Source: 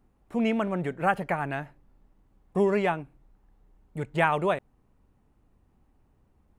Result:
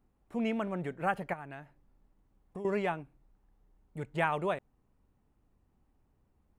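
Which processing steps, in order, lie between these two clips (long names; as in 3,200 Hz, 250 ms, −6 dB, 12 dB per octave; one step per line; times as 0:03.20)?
0:01.33–0:02.65: downward compressor 3 to 1, threshold −37 dBFS, peak gain reduction 13.5 dB
level −6.5 dB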